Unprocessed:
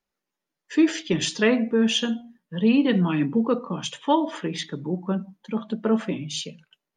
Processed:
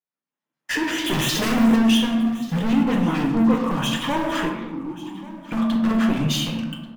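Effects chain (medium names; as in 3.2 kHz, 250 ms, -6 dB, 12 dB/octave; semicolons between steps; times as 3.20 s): recorder AGC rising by 30 dB/s; high-pass 120 Hz 12 dB/octave; treble shelf 6 kHz -10 dB; waveshaping leveller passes 5; peak limiter -15.5 dBFS, peak gain reduction 7.5 dB; 1.06–1.76 s: waveshaping leveller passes 5; LFO notch square 6.6 Hz 430–4700 Hz; 2.83–3.57 s: phase dispersion highs, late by 44 ms, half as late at 1.9 kHz; 4.49–5.52 s: vowel filter u; delay 1136 ms -19.5 dB; reverberation RT60 1.3 s, pre-delay 4 ms, DRR 1 dB; trim -6 dB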